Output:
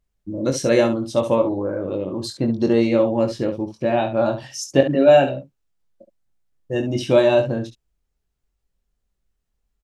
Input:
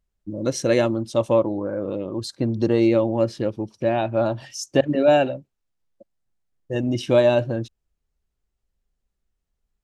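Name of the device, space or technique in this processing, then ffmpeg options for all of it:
slapback doubling: -filter_complex "[0:a]asplit=3[s0][s1][s2];[s1]adelay=22,volume=0.531[s3];[s2]adelay=69,volume=0.316[s4];[s0][s3][s4]amix=inputs=3:normalize=0,volume=1.12"

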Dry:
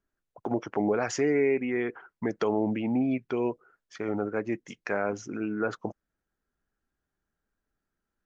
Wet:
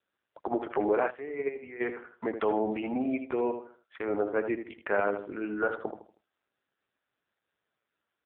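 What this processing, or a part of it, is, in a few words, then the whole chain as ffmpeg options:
telephone: -filter_complex "[0:a]asettb=1/sr,asplit=3[s0][s1][s2];[s0]atrim=end=2.624[s3];[s1]atrim=start=2.62:end=3.18,asetpts=PTS-STARTPTS,afade=t=in:d=0.004:c=qsin,afade=t=out:st=0.556:d=0.004:c=qsin,equalizer=f=150:w=3.1:g=-3[s4];[s2]atrim=start=3.176[s5];[s3][s4]acrossfade=d=0.004:c1=hsin:c2=qsin[s6];[s6][s5]acrossfade=d=0.004:c1=qsin:c2=hsin,asplit=2[s7][s8];[s8]adelay=79,lowpass=f=2800:p=1,volume=0.398,asplit=2[s9][s10];[s10]adelay=79,lowpass=f=2800:p=1,volume=0.33,asplit=2[s11][s12];[s12]adelay=79,lowpass=f=2800:p=1,volume=0.33,asplit=2[s13][s14];[s14]adelay=79,lowpass=f=2800:p=1,volume=0.33[s15];[s7][s9][s11][s13][s15]amix=inputs=5:normalize=0,asplit=3[s16][s17][s18];[s16]afade=t=out:st=1.09:d=0.02[s19];[s17]agate=range=0.224:threshold=0.1:ratio=16:detection=peak,afade=t=in:st=1.09:d=0.02,afade=t=out:st=1.79:d=0.02[s20];[s18]afade=t=in:st=1.79:d=0.02[s21];[s19][s20][s21]amix=inputs=3:normalize=0,asplit=3[s22][s23][s24];[s22]afade=t=out:st=4.09:d=0.02[s25];[s23]lowshelf=f=290:g=4,afade=t=in:st=4.09:d=0.02,afade=t=out:st=5.06:d=0.02[s26];[s24]afade=t=in:st=5.06:d=0.02[s27];[s25][s26][s27]amix=inputs=3:normalize=0,highpass=380,lowpass=3600,volume=1.41" -ar 8000 -c:a libopencore_amrnb -b:a 5900

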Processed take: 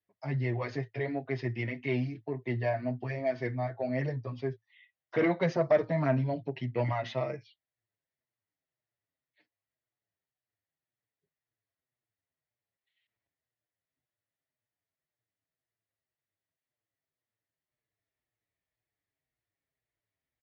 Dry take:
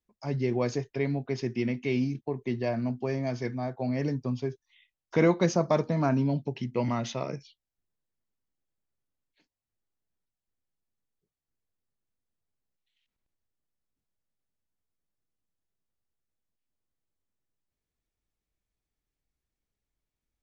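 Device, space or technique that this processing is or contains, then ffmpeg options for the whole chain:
barber-pole flanger into a guitar amplifier: -filter_complex "[0:a]asplit=2[s0][s1];[s1]adelay=6.6,afreqshift=-1.9[s2];[s0][s2]amix=inputs=2:normalize=1,asoftclip=type=tanh:threshold=0.106,highpass=100,equalizer=f=110:t=q:w=4:g=9,equalizer=f=210:t=q:w=4:g=-8,equalizer=f=640:t=q:w=4:g=7,equalizer=f=1900:t=q:w=4:g=10,lowpass=f=4300:w=0.5412,lowpass=f=4300:w=1.3066"

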